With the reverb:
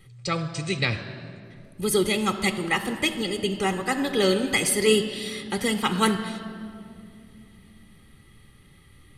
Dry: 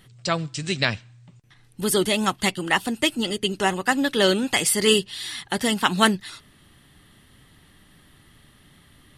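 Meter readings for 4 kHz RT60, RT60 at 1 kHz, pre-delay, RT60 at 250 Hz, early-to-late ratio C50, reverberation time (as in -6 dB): 1.5 s, 2.1 s, 3 ms, 4.1 s, 10.5 dB, 2.5 s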